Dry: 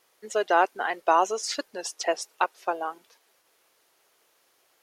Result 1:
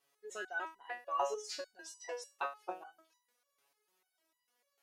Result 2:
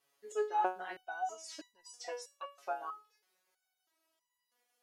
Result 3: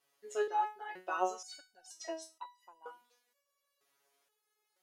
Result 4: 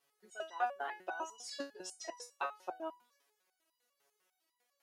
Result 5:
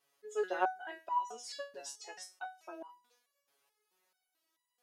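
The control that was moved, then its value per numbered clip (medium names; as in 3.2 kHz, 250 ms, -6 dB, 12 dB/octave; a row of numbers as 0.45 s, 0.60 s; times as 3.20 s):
resonator arpeggio, rate: 6.7 Hz, 3.1 Hz, 2.1 Hz, 10 Hz, 4.6 Hz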